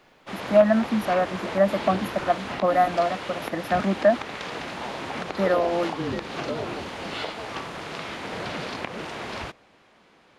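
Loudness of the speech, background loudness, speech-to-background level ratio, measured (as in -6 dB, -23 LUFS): -24.0 LUFS, -32.5 LUFS, 8.5 dB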